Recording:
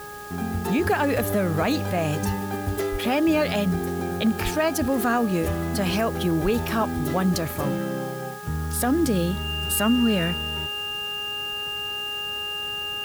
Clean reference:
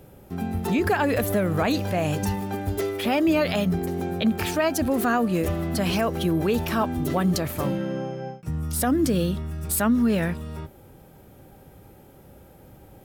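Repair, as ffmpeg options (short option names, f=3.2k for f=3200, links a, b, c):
-filter_complex "[0:a]bandreject=f=414:t=h:w=4,bandreject=f=828:t=h:w=4,bandreject=f=1.242k:t=h:w=4,bandreject=f=1.656k:t=h:w=4,bandreject=f=2.8k:w=30,asplit=3[a][b][c];[a]afade=t=out:st=2.91:d=0.02[d];[b]highpass=f=140:w=0.5412,highpass=f=140:w=1.3066,afade=t=in:st=2.91:d=0.02,afade=t=out:st=3.03:d=0.02[e];[c]afade=t=in:st=3.03:d=0.02[f];[d][e][f]amix=inputs=3:normalize=0,asplit=3[g][h][i];[g]afade=t=out:st=4.43:d=0.02[j];[h]highpass=f=140:w=0.5412,highpass=f=140:w=1.3066,afade=t=in:st=4.43:d=0.02,afade=t=out:st=4.55:d=0.02[k];[i]afade=t=in:st=4.55:d=0.02[l];[j][k][l]amix=inputs=3:normalize=0,asplit=3[m][n][o];[m]afade=t=out:st=6.43:d=0.02[p];[n]highpass=f=140:w=0.5412,highpass=f=140:w=1.3066,afade=t=in:st=6.43:d=0.02,afade=t=out:st=6.55:d=0.02[q];[o]afade=t=in:st=6.55:d=0.02[r];[p][q][r]amix=inputs=3:normalize=0,afwtdn=0.005"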